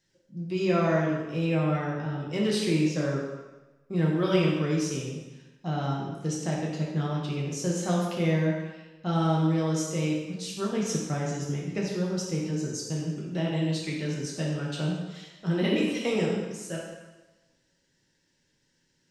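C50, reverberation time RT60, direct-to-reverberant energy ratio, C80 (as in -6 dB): 1.0 dB, 1.1 s, -4.0 dB, 3.5 dB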